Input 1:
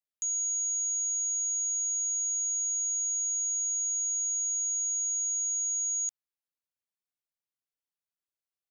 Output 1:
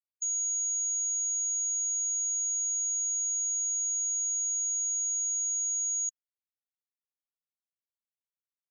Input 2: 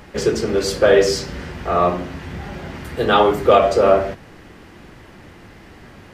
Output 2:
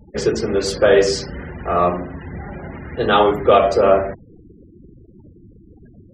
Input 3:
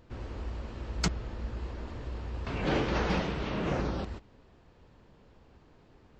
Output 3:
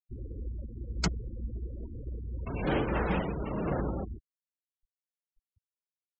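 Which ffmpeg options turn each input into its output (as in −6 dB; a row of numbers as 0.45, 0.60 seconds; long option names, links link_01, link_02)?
-af "afftfilt=real='re*gte(hypot(re,im),0.0251)':imag='im*gte(hypot(re,im),0.0251)':win_size=1024:overlap=0.75"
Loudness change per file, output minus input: 0.0, 0.0, −0.5 LU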